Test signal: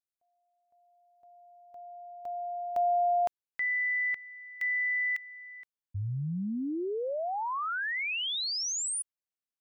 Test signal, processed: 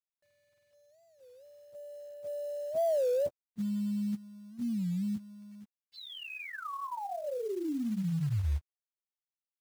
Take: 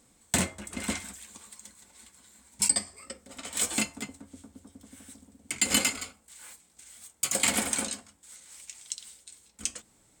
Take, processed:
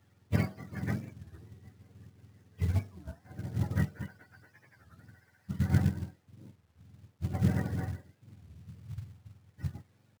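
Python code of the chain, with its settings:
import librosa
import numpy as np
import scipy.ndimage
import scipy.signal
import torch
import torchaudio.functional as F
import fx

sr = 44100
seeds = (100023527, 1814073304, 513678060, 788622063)

p1 = fx.octave_mirror(x, sr, pivot_hz=640.0)
p2 = fx.rider(p1, sr, range_db=5, speed_s=2.0)
p3 = p1 + (p2 * 10.0 ** (-2.0 / 20.0))
p4 = fx.spacing_loss(p3, sr, db_at_10k=21)
p5 = fx.quant_companded(p4, sr, bits=6)
p6 = fx.record_warp(p5, sr, rpm=33.33, depth_cents=250.0)
y = p6 * 10.0 ** (-6.0 / 20.0)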